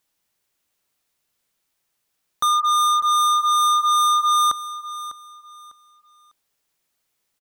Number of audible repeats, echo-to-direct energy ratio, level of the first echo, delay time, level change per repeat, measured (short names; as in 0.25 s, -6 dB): 2, -14.0 dB, -14.5 dB, 0.6 s, -11.0 dB